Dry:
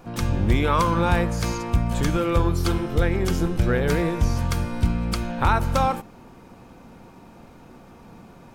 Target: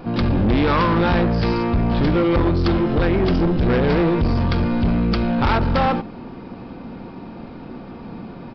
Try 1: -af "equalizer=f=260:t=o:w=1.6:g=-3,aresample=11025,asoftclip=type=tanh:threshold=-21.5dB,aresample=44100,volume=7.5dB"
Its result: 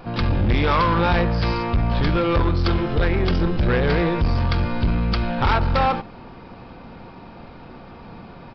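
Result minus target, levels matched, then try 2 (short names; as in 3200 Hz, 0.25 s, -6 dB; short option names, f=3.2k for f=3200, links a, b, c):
250 Hz band -3.5 dB
-af "equalizer=f=260:t=o:w=1.6:g=6.5,aresample=11025,asoftclip=type=tanh:threshold=-21.5dB,aresample=44100,volume=7.5dB"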